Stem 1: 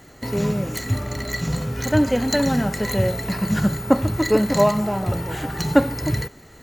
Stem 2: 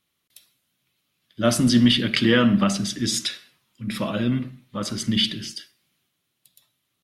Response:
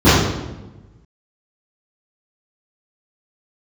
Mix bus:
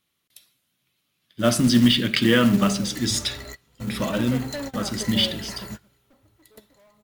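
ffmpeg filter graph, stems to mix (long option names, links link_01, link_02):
-filter_complex "[0:a]equalizer=frequency=170:width=2.4:gain=-13,asoftclip=type=hard:threshold=-19.5dB,adelay=2200,volume=-8dB[link_01];[1:a]volume=0dB,asplit=2[link_02][link_03];[link_03]apad=whole_len=389054[link_04];[link_01][link_04]sidechaingate=range=-27dB:threshold=-52dB:ratio=16:detection=peak[link_05];[link_05][link_02]amix=inputs=2:normalize=0,acrusher=bits=5:mode=log:mix=0:aa=0.000001"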